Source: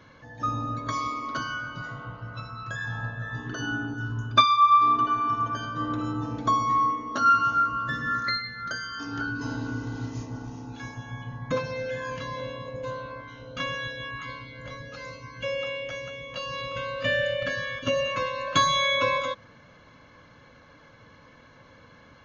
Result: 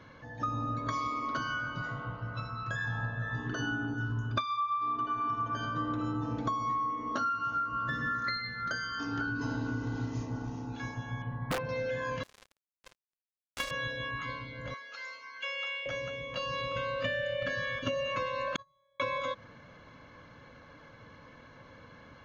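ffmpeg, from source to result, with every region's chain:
-filter_complex "[0:a]asettb=1/sr,asplit=3[a][b][c];[a]atrim=end=11.224[d];[b]atrim=start=11.22:end=11.69,asetpts=PTS-STARTPTS,afade=t=in:d=0.004:c=qsin,afade=t=out:st=0.466:d=0.004:c=qsin,lowpass=2.3k,aeval=exprs='(mod(9.44*val(0)+1,2)-1)/9.44':c=same[e];[c]atrim=start=11.686[f];[d][e]acrossfade=d=0.004:c1=hsin:c2=qsin[g];[g][f]acrossfade=d=0.004:c1=qsin:c2=hsin,asettb=1/sr,asplit=3[h][i][j];[h]atrim=end=12.234[k];[i]atrim=start=12.23:end=13.71,asetpts=PTS-STARTPTS,afade=t=in:d=0.004:c=qsin,afade=t=out:st=1.476:d=0.004:c=qsin,highpass=f=130:w=0.5412,highpass=f=130:w=1.3066,aemphasis=mode=production:type=riaa,acrusher=bits=3:mix=0:aa=0.5[l];[j]atrim=start=13.706[m];[k][l]acrossfade=d=0.004:c1=hsin:c2=qsin[n];[n][m]acrossfade=d=0.004:c1=qsin:c2=hsin,asettb=1/sr,asplit=3[o][p][q];[o]atrim=end=14.744[r];[p]atrim=start=14.74:end=15.86,asetpts=PTS-STARTPTS,afade=t=in:d=0.004:c=qsin,afade=t=out:st=1.116:d=0.004:c=qsin,highpass=1.1k,aecho=1:1:4.4:0.45,atrim=end_sample=49392[s];[q]atrim=start=15.856[t];[r][s]acrossfade=d=0.004:c1=hsin:c2=qsin[u];[u][t]acrossfade=d=0.004:c1=qsin:c2=hsin,asettb=1/sr,asplit=3[v][w][x];[v]atrim=end=18.564[y];[w]atrim=start=18.56:end=19,asetpts=PTS-STARTPTS,afade=t=in:d=0.004:c=qsin,afade=t=out:st=0.436:d=0.004:c=qsin,lowpass=f=1.8k:p=1,aecho=1:1:1.6:0.75,atrim=end_sample=19404,agate=range=-46dB:threshold=-16dB:ratio=16:release=100:detection=peak[z];[x]atrim=start=18.996[aa];[y][z]acrossfade=d=0.004:c1=hsin:c2=qsin[ab];[ab][aa]acrossfade=d=0.004:c1=qsin:c2=hsin,highshelf=f=4.6k:g=-6.5,acompressor=threshold=-29dB:ratio=16"

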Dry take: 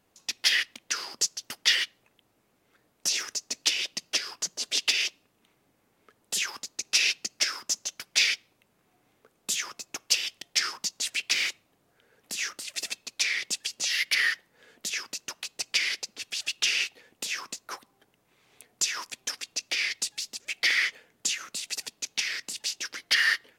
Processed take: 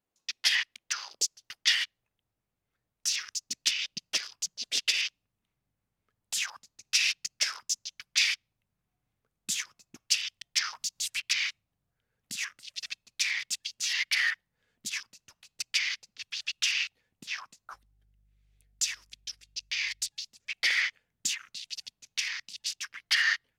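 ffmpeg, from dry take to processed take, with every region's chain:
-filter_complex "[0:a]asettb=1/sr,asplit=3[a][b][c];[a]atrim=end=10.734[d];[b]atrim=start=10.73:end=11.22,asetpts=PTS-STARTPTS,afade=t=in:d=0.004:c=qsin,afade=t=out:st=0.486:d=0.004:c=qsin,highshelf=f=7.7k:g=5,acompressor=mode=upward:threshold=-35dB:ratio=2.5:attack=3.2:release=140:knee=2.83:detection=peak,asoftclip=type=hard:threshold=-24dB[e];[c]atrim=start=11.216[f];[d][e]acrossfade=d=0.004:c1=hsin:c2=qsin[g];[g][f]acrossfade=d=0.004:c1=qsin:c2=hsin,asettb=1/sr,asplit=3[h][i][j];[h]atrim=end=17.734[k];[i]atrim=start=17.73:end=20.08,asetpts=PTS-STARTPTS,afade=t=in:d=0.004:c=qsin,afade=t=out:st=2.346:d=0.004:c=qsin,equalizer=f=1k:w=1.9:g=-11,aeval=exprs='val(0)+0.000708*(sin(2*PI*50*n/s)+sin(2*PI*2*50*n/s)/2+sin(2*PI*3*50*n/s)/3+sin(2*PI*4*50*n/s)/4+sin(2*PI*5*50*n/s)/5)':c=same[l];[j]atrim=start=20.076[m];[k][l]acrossfade=d=0.004:c1=hsin:c2=qsin[n];[n][m]acrossfade=d=0.004:c1=qsin:c2=hsin,afwtdn=0.0126,asubboost=boost=8:cutoff=120,volume=-2dB"

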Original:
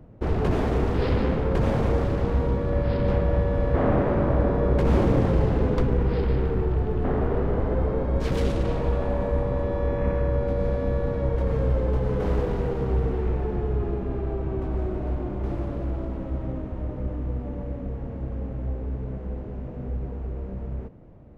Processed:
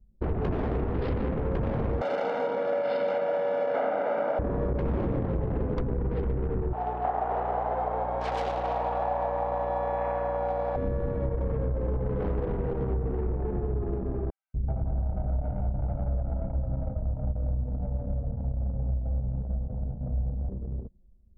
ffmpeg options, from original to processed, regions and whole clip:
-filter_complex "[0:a]asettb=1/sr,asplit=3[a][b][c];[a]atrim=end=2.014[d];[b]atrim=start=2.01:end=4.39,asetpts=PTS-STARTPTS,afade=t=in:d=0.004:c=qsin,afade=t=out:st=2.376:d=0.004:c=qsin,highpass=f=320:w=0.5412,highpass=f=320:w=1.3066,aecho=1:1:1.4:0.82,atrim=end_sample=104958,acontrast=21[e];[c]atrim=start=4.386[f];[d][e]acrossfade=d=0.004:c1=hsin:c2=qsin[g];[g][f]acrossfade=d=0.004:c1=qsin:c2=hsin,asettb=1/sr,asplit=3[h][i][j];[h]atrim=end=6.734[k];[i]atrim=start=6.73:end=10.76,asetpts=PTS-STARTPTS,afade=t=in:d=0.004:c=qsin,afade=t=out:st=4.026:d=0.004:c=qsin,highpass=f=760:t=q:w=6.2,aeval=exprs='val(0)+0.0178*(sin(2*PI*60*n/s)+sin(2*PI*2*60*n/s)/2+sin(2*PI*3*60*n/s)/3+sin(2*PI*4*60*n/s)/4+sin(2*PI*5*60*n/s)/5)':c=same[l];[j]atrim=start=10.756[m];[k][l]acrossfade=d=0.004:c1=hsin:c2=qsin[n];[n][m]acrossfade=d=0.004:c1=qsin:c2=hsin,asettb=1/sr,asplit=3[o][p][q];[o]atrim=end=14.304[r];[p]atrim=start=14.3:end=20.49,asetpts=PTS-STARTPTS,afade=t=in:d=0.004:c=qsin,afade=t=out:st=6.186:d=0.004:c=qsin,aecho=1:1:1.4:0.88,atrim=end_sample=272979,acrossover=split=360|1900[s][t][u];[s]adelay=240[v];[t]adelay=380[w];[v][w][u]amix=inputs=3:normalize=0,atrim=end_sample=272979[x];[q]atrim=start=20.486[y];[r][x]acrossfade=d=0.004:c1=hsin:c2=qsin[z];[z][y]acrossfade=d=0.004:c1=qsin:c2=hsin,acompressor=threshold=-22dB:ratio=12,anlmdn=10,volume=-1.5dB"

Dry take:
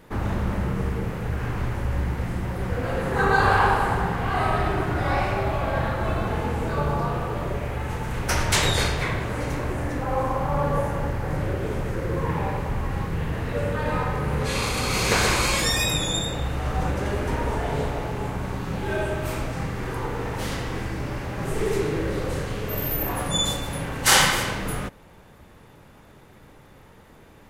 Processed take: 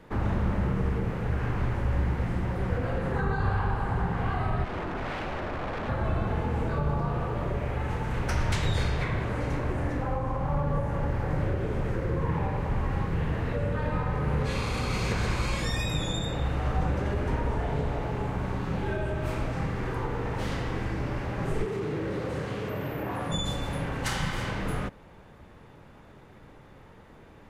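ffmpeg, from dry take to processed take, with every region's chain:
-filter_complex "[0:a]asettb=1/sr,asplit=3[a][b][c];[a]atrim=end=4.644[d];[b]atrim=start=4.64:end=5.89,asetpts=PTS-STARTPTS,afade=t=in:d=0.004:c=qsin,afade=t=out:st=1.246:d=0.004:c=qsin,afreqshift=-35,highshelf=f=2.2k:g=-10,aeval=exprs='0.0531*(abs(mod(val(0)/0.0531+3,4)-2)-1)':c=same[e];[c]atrim=start=5.886[f];[d][e]acrossfade=d=0.004:c1=hsin:c2=qsin[g];[g][f]acrossfade=d=0.004:c1=qsin:c2=hsin,asettb=1/sr,asplit=3[h][i][j];[h]atrim=end=21.654[k];[i]atrim=start=21.65:end=23.32,asetpts=PTS-STARTPTS,afade=t=in:d=0.004:c=qsin,afade=t=out:st=1.666:d=0.004:c=qsin,highpass=110,acrossover=split=3200[l][m];[m]acompressor=threshold=-40dB:ratio=4:attack=1:release=60[n];[l][n]amix=inputs=2:normalize=0,asoftclip=type=hard:threshold=-22.5dB[o];[j]atrim=start=23.316[p];[k][o]acrossfade=d=0.004:c1=hsin:c2=qsin[q];[q][p]acrossfade=d=0.004:c1=qsin:c2=hsin,aemphasis=mode=reproduction:type=50kf,acrossover=split=220[r][s];[s]acompressor=threshold=-29dB:ratio=10[t];[r][t]amix=inputs=2:normalize=0,volume=-1dB"

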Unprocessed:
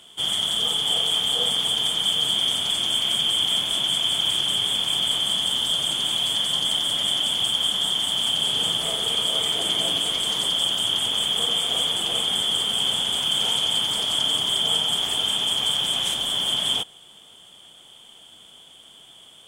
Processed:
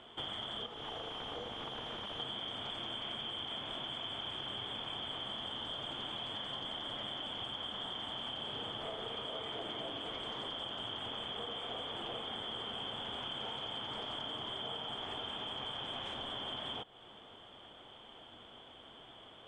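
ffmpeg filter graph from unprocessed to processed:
-filter_complex "[0:a]asettb=1/sr,asplit=3[a][b][c];[a]atrim=end=0.664[d];[b]atrim=start=0.66:end=2.2,asetpts=PTS-STARTPTS,afade=t=in:d=0.004:c=qsin,afade=t=out:st=1.536:d=0.004:c=qsin,lowpass=f=2.5k:p=1,asoftclip=type=hard:threshold=-32.5dB[e];[c]atrim=start=2.196[f];[d][e]acrossfade=d=0.004:c1=hsin:c2=qsin[g];[g][f]acrossfade=d=0.004:c1=qsin:c2=hsin,lowpass=1.7k,equalizer=f=170:t=o:w=0.23:g=-14,acompressor=threshold=-42dB:ratio=6,volume=2.5dB"

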